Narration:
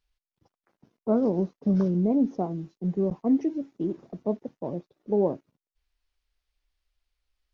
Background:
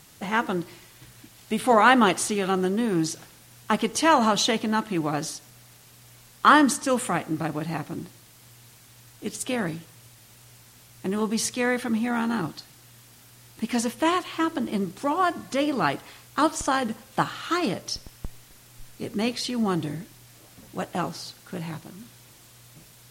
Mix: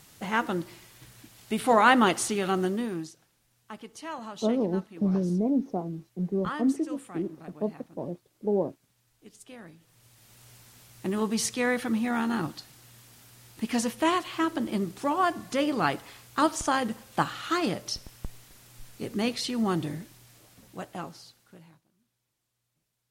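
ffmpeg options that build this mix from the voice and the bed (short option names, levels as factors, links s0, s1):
-filter_complex "[0:a]adelay=3350,volume=0.75[s0];[1:a]volume=5.31,afade=t=out:st=2.65:d=0.47:silence=0.149624,afade=t=in:st=9.78:d=0.71:silence=0.141254,afade=t=out:st=19.79:d=2.03:silence=0.0421697[s1];[s0][s1]amix=inputs=2:normalize=0"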